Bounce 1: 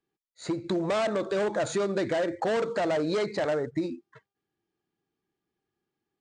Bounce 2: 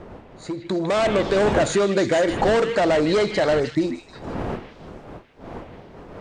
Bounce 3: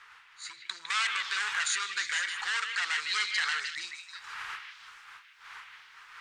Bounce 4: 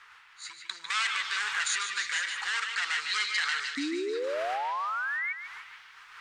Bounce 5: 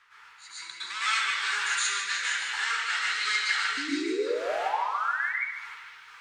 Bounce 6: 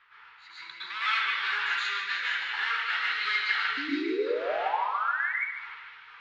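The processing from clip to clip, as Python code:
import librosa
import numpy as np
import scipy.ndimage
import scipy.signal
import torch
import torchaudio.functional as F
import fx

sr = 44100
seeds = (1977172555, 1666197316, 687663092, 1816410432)

y1 = fx.fade_in_head(x, sr, length_s=1.2)
y1 = fx.dmg_wind(y1, sr, seeds[0], corner_hz=570.0, level_db=-41.0)
y1 = fx.echo_stepped(y1, sr, ms=155, hz=2600.0, octaves=0.7, feedback_pct=70, wet_db=-3)
y1 = y1 * 10.0 ** (8.0 / 20.0)
y2 = scipy.signal.sosfilt(scipy.signal.cheby2(4, 40, 670.0, 'highpass', fs=sr, output='sos'), y1)
y2 = fx.rider(y2, sr, range_db=10, speed_s=2.0)
y3 = fx.spec_paint(y2, sr, seeds[1], shape='rise', start_s=3.77, length_s=1.56, low_hz=270.0, high_hz=2300.0, level_db=-32.0)
y3 = fx.echo_feedback(y3, sr, ms=147, feedback_pct=44, wet_db=-10)
y4 = fx.rev_plate(y3, sr, seeds[2], rt60_s=0.55, hf_ratio=0.9, predelay_ms=100, drr_db=-9.5)
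y4 = y4 * 10.0 ** (-7.5 / 20.0)
y5 = scipy.signal.sosfilt(scipy.signal.butter(4, 3800.0, 'lowpass', fs=sr, output='sos'), y4)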